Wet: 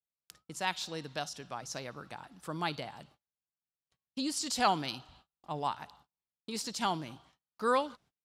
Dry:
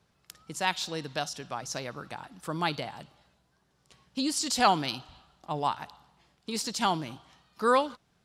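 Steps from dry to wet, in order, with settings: gate -55 dBFS, range -34 dB; gain -5 dB

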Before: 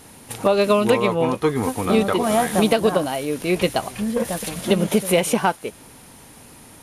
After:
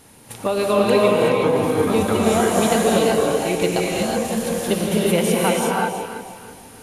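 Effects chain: 1.96–4.3 bell 7000 Hz +10.5 dB 0.44 oct; echo with dull and thin repeats by turns 0.162 s, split 880 Hz, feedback 59%, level -6 dB; non-linear reverb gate 0.4 s rising, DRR -3 dB; gain -4 dB

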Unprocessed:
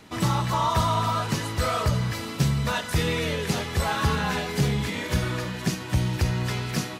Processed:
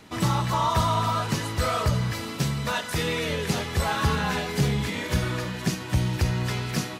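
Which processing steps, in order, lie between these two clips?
2.38–3.3 low shelf 120 Hz -9.5 dB

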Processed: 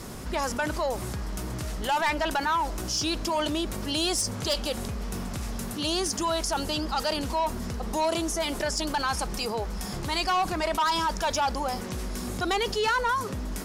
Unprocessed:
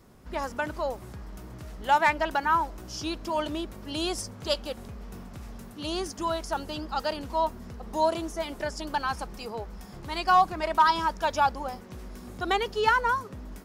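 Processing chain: LPF 12000 Hz 12 dB/oct; high shelf 3700 Hz +9.5 dB; soft clip -20 dBFS, distortion -11 dB; fast leveller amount 50%; gain -1 dB

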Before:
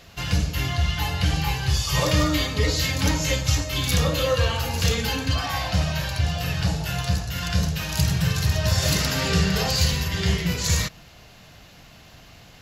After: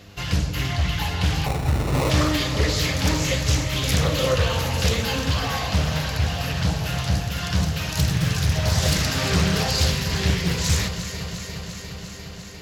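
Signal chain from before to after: buzz 100 Hz, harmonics 5, -50 dBFS; on a send: echo with dull and thin repeats by turns 0.175 s, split 1300 Hz, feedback 87%, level -9 dB; 1.46–2.1 on the sum: sample-rate reducer 1600 Hz, jitter 0%; Doppler distortion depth 0.52 ms

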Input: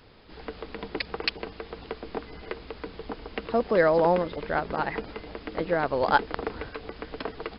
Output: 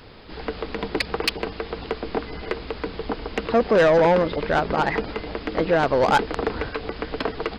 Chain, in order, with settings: soft clip -21 dBFS, distortion -10 dB; gain +9 dB

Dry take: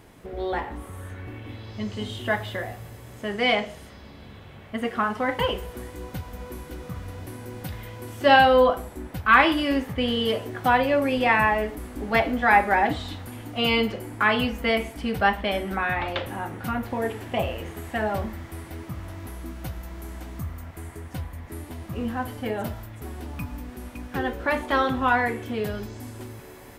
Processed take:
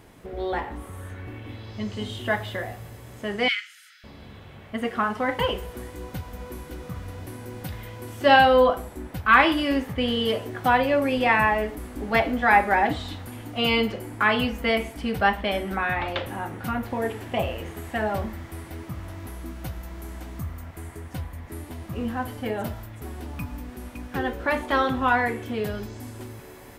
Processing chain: 3.48–4.04 Chebyshev high-pass 1300 Hz, order 8

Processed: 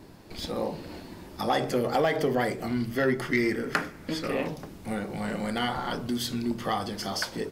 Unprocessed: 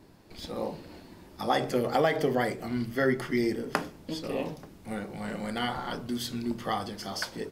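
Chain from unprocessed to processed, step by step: 3.33–4.48 band shelf 1700 Hz +9 dB 1.1 oct; in parallel at +0.5 dB: compressor, threshold -37 dBFS, peak gain reduction 19 dB; on the sum: soft clip -14.5 dBFS, distortion -17 dB

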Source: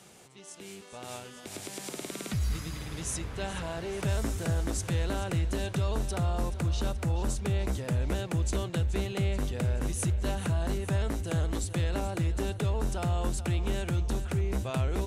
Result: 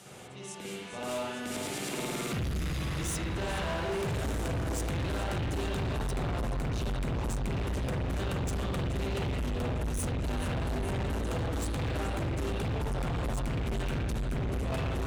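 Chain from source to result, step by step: added harmonics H 5 -15 dB, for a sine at -19 dBFS; spring tank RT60 1.2 s, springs 45/53 ms, chirp 35 ms, DRR -5 dB; hard clip -26 dBFS, distortion -6 dB; gain -3.5 dB

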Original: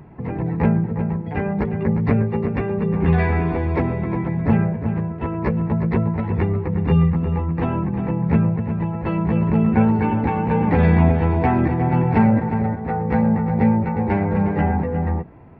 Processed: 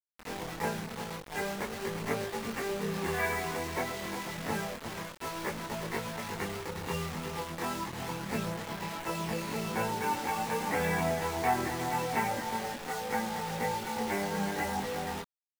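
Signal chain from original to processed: HPF 1200 Hz 6 dB/oct; notch 2500 Hz, Q 16; bit-crush 6-bit; chorus voices 4, 0.42 Hz, delay 23 ms, depth 3.1 ms

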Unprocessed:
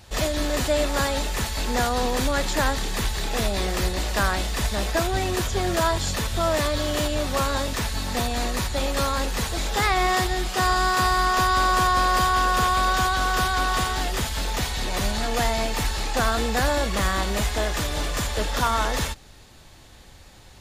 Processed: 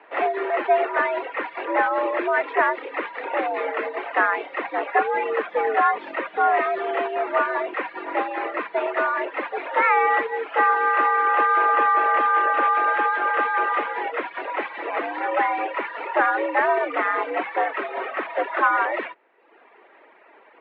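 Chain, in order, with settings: reverb removal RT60 0.86 s; mistuned SSB +93 Hz 260–2300 Hz; gain +5.5 dB

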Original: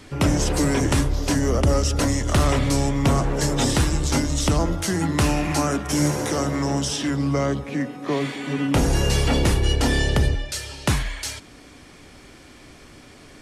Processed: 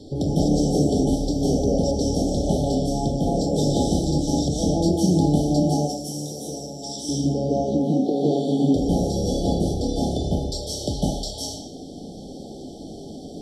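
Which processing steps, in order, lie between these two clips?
compressor, threshold -26 dBFS, peak gain reduction 11.5 dB; FFT band-reject 860–3000 Hz; 5.7–7.09 pre-emphasis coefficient 0.8; reverb RT60 0.75 s, pre-delay 0.148 s, DRR -6.5 dB; gain -9 dB

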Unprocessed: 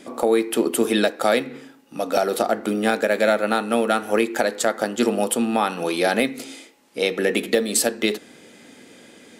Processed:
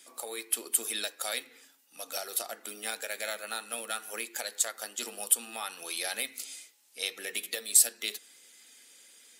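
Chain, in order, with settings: bin magnitudes rounded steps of 15 dB; differentiator

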